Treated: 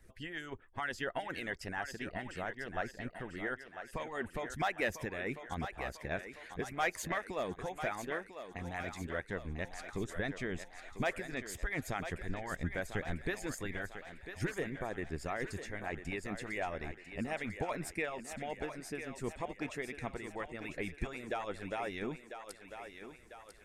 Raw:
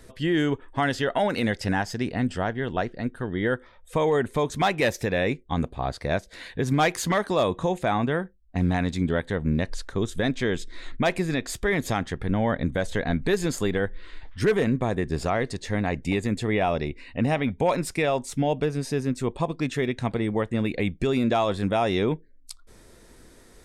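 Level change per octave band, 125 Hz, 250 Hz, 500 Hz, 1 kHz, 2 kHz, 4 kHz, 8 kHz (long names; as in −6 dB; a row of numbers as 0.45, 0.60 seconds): −16.5, −17.0, −15.0, −12.5, −8.5, −14.0, −10.5 decibels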